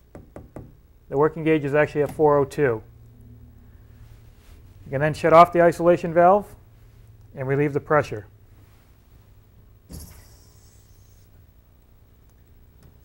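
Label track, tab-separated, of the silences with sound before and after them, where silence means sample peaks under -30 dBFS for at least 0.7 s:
2.780000	4.910000	silence
6.420000	7.370000	silence
8.200000	9.920000	silence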